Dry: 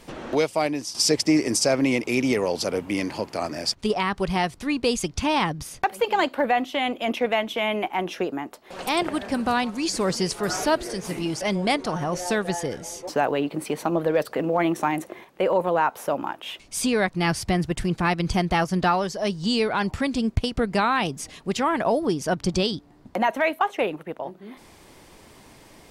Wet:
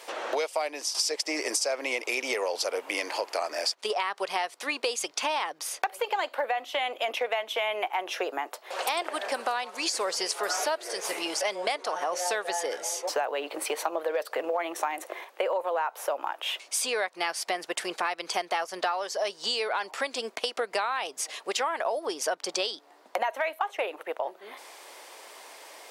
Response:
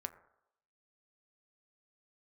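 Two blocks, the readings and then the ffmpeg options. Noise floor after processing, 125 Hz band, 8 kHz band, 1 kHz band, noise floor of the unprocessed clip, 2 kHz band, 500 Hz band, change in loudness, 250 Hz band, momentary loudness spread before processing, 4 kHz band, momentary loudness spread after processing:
-56 dBFS, under -35 dB, -1.0 dB, -4.5 dB, -51 dBFS, -3.5 dB, -5.5 dB, -5.5 dB, -18.0 dB, 8 LU, -2.0 dB, 5 LU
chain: -af "highpass=f=490:w=0.5412,highpass=f=490:w=1.3066,acompressor=threshold=-31dB:ratio=6,volume=5dB"

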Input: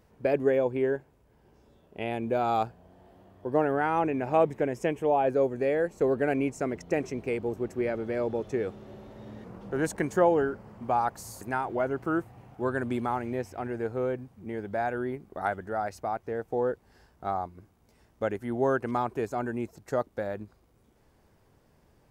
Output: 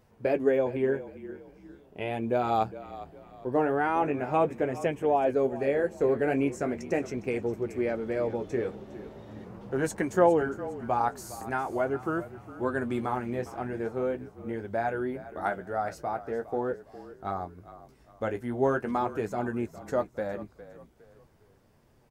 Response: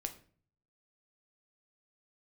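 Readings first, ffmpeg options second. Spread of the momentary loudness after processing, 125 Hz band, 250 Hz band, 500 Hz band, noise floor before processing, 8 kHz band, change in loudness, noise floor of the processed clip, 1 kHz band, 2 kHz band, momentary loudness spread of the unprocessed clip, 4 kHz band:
16 LU, -0.5 dB, 0.0 dB, 0.0 dB, -64 dBFS, 0.0 dB, 0.0 dB, -61 dBFS, 0.0 dB, 0.0 dB, 12 LU, n/a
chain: -filter_complex "[0:a]flanger=delay=7.6:depth=9.9:regen=-36:speed=0.41:shape=triangular,asplit=4[a][b][c][d];[b]adelay=408,afreqshift=-37,volume=-15.5dB[e];[c]adelay=816,afreqshift=-74,volume=-24.1dB[f];[d]adelay=1224,afreqshift=-111,volume=-32.8dB[g];[a][e][f][g]amix=inputs=4:normalize=0,volume=3.5dB"

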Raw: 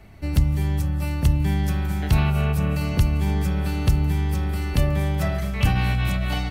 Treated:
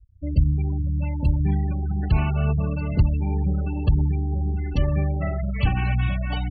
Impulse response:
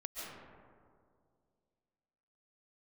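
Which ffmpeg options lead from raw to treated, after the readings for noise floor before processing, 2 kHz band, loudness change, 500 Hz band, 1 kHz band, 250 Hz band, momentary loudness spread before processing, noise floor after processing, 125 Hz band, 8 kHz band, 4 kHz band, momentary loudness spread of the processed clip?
-27 dBFS, -4.5 dB, -1.0 dB, -2.0 dB, -3.0 dB, -1.5 dB, 4 LU, -28 dBFS, -0.5 dB, under -25 dB, -7.5 dB, 4 LU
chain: -af "aphaser=in_gain=1:out_gain=1:delay=3.8:decay=0.25:speed=2:type=triangular,afftfilt=real='re*gte(hypot(re,im),0.0631)':imag='im*gte(hypot(re,im),0.0631)':win_size=1024:overlap=0.75,volume=-1.5dB"

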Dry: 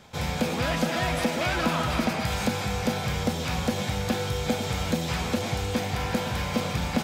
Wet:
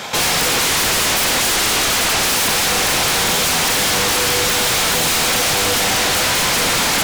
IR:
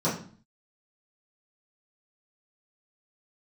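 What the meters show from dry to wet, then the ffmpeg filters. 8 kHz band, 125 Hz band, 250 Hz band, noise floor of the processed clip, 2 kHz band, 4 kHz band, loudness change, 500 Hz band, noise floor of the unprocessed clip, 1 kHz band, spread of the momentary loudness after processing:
+22.5 dB, -0.5 dB, +1.0 dB, -17 dBFS, +14.0 dB, +17.5 dB, +13.0 dB, +7.0 dB, -31 dBFS, +10.5 dB, 0 LU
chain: -filter_complex "[0:a]highpass=f=760:p=1,asplit=2[a][b];[b]alimiter=level_in=2dB:limit=-24dB:level=0:latency=1,volume=-2dB,volume=0.5dB[c];[a][c]amix=inputs=2:normalize=0,aeval=exprs='0.211*sin(PI/2*7.08*val(0)/0.211)':c=same"

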